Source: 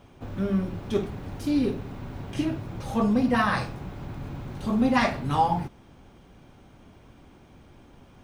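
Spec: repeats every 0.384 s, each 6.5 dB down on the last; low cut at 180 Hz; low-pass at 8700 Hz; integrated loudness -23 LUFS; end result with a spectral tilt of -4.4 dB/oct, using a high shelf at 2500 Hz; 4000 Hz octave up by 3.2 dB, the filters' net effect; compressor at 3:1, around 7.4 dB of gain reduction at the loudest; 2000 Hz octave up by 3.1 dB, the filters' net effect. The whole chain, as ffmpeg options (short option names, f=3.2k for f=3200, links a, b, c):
-af "highpass=180,lowpass=8.7k,equalizer=f=2k:t=o:g=4.5,highshelf=f=2.5k:g=-5,equalizer=f=4k:t=o:g=7,acompressor=threshold=-27dB:ratio=3,aecho=1:1:384|768|1152|1536|1920|2304:0.473|0.222|0.105|0.0491|0.0231|0.0109,volume=9dB"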